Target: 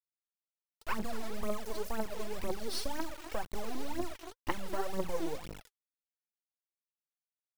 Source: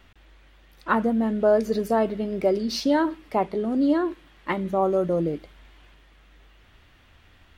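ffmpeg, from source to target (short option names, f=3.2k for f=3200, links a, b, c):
-filter_complex "[0:a]acompressor=threshold=-27dB:ratio=16,asplit=2[a][b];[b]adelay=239.1,volume=-15dB,highshelf=f=4k:g=-5.38[c];[a][c]amix=inputs=2:normalize=0,acrusher=bits=4:dc=4:mix=0:aa=0.000001,aphaser=in_gain=1:out_gain=1:delay=3.2:decay=0.72:speed=2:type=triangular,volume=-5dB"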